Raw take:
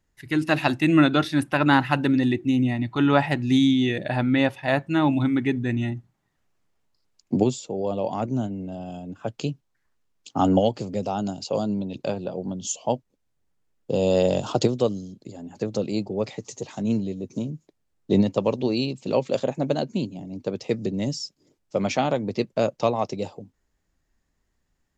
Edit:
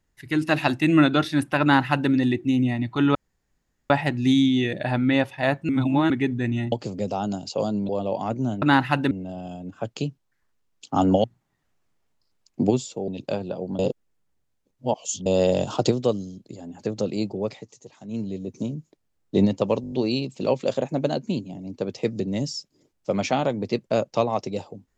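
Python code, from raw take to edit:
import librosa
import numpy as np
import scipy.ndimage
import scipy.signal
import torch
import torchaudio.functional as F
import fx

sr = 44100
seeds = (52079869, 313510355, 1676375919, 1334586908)

y = fx.edit(x, sr, fx.duplicate(start_s=1.62, length_s=0.49, to_s=8.54),
    fx.insert_room_tone(at_s=3.15, length_s=0.75),
    fx.reverse_span(start_s=4.94, length_s=0.41),
    fx.swap(start_s=5.97, length_s=1.84, other_s=10.67, other_length_s=1.17),
    fx.reverse_span(start_s=12.55, length_s=1.47),
    fx.fade_down_up(start_s=16.14, length_s=1.03, db=-12.0, fade_s=0.35),
    fx.stutter(start_s=18.58, slice_s=0.02, count=6), tone=tone)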